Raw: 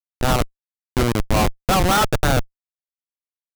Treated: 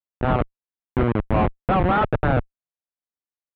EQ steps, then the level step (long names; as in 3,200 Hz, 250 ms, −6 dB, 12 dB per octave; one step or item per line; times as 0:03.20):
high-pass filter 46 Hz 6 dB per octave
Bessel low-pass filter 1,900 Hz, order 6
high-frequency loss of the air 200 metres
0.0 dB